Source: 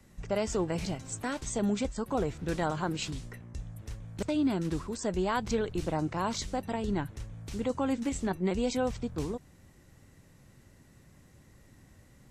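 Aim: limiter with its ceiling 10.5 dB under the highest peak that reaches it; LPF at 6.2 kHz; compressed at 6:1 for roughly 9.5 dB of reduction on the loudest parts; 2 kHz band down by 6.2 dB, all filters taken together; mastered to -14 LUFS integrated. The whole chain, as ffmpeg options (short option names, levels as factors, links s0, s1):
-af "lowpass=6200,equalizer=f=2000:t=o:g=-8.5,acompressor=threshold=0.0178:ratio=6,volume=29.9,alimiter=limit=0.596:level=0:latency=1"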